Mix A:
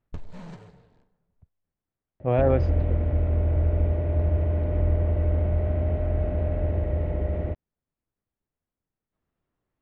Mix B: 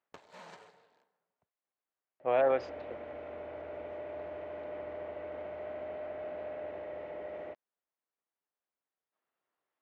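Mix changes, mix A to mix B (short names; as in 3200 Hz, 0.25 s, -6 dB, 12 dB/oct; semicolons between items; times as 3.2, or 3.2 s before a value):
second sound -3.5 dB; master: add HPF 620 Hz 12 dB/oct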